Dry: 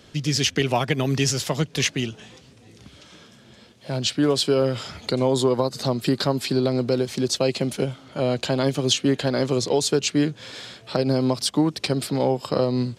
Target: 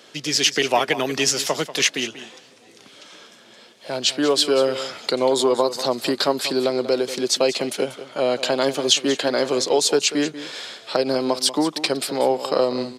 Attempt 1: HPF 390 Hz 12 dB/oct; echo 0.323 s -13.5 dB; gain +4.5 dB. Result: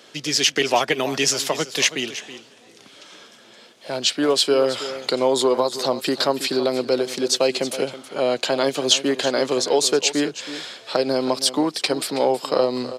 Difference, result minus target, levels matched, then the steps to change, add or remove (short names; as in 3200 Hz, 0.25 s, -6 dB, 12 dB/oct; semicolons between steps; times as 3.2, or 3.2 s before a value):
echo 0.134 s late
change: echo 0.189 s -13.5 dB